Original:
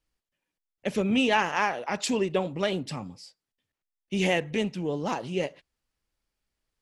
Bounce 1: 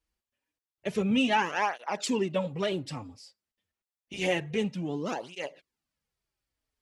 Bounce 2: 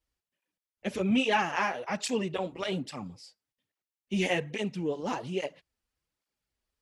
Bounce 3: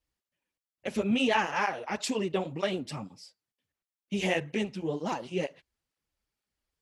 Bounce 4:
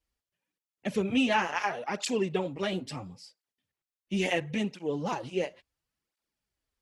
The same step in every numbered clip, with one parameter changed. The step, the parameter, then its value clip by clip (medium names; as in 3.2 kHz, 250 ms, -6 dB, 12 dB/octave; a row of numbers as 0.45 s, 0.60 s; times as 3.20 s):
cancelling through-zero flanger, nulls at: 0.28 Hz, 1.2 Hz, 2.1 Hz, 0.73 Hz